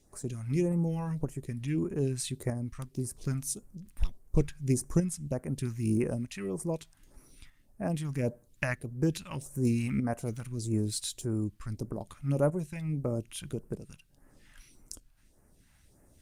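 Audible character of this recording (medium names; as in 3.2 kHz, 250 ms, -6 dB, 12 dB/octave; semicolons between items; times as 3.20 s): tremolo saw up 0.8 Hz, depth 50%; phasing stages 2, 1.7 Hz, lowest notch 380–3400 Hz; Opus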